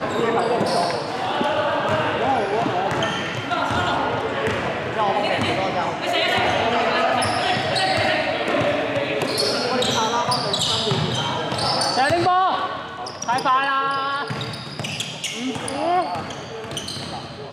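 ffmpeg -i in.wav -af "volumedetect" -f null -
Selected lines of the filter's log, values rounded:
mean_volume: -21.9 dB
max_volume: -9.3 dB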